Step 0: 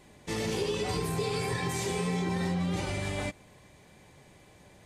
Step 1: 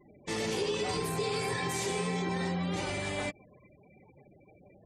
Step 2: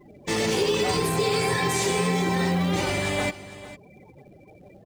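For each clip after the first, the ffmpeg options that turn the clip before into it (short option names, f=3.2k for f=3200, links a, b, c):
-filter_complex "[0:a]afftfilt=real='re*gte(hypot(re,im),0.00398)':imag='im*gte(hypot(re,im),0.00398)':win_size=1024:overlap=0.75,lowshelf=f=130:g=-11.5,asplit=2[a][b];[b]alimiter=level_in=9dB:limit=-24dB:level=0:latency=1,volume=-9dB,volume=-3dB[c];[a][c]amix=inputs=2:normalize=0,volume=-1.5dB"
-filter_complex "[0:a]asplit=2[a][b];[b]acrusher=bits=2:mode=log:mix=0:aa=0.000001,volume=-10dB[c];[a][c]amix=inputs=2:normalize=0,aecho=1:1:453:0.158,volume=6dB"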